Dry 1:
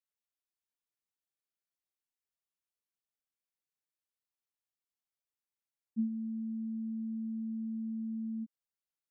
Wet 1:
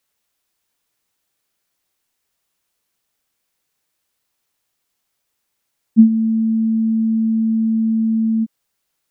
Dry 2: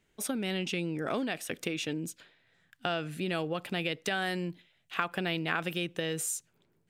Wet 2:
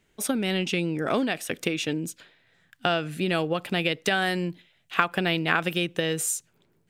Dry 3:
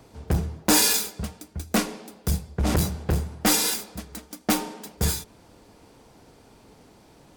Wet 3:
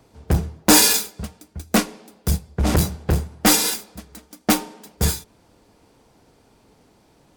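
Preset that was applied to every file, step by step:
upward expansion 1.5:1, over -36 dBFS; peak normalisation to -1.5 dBFS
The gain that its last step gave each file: +24.0 dB, +9.5 dB, +6.5 dB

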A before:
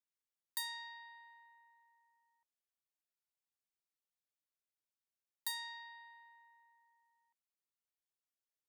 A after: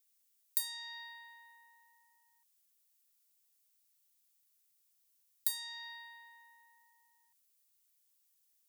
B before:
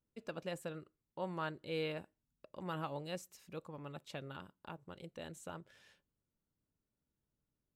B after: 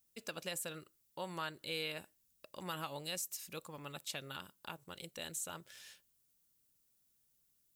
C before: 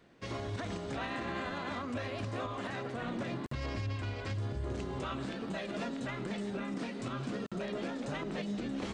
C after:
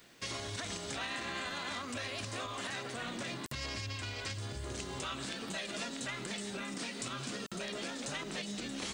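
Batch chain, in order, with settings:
pre-emphasis filter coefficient 0.9; compression 2:1, threshold -57 dBFS; trim +17.5 dB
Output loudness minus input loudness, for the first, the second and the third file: +6.0 LU, +1.5 LU, -1.0 LU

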